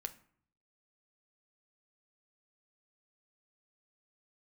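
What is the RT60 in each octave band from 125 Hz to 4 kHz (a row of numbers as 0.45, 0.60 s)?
0.85, 0.75, 0.55, 0.60, 0.50, 0.35 s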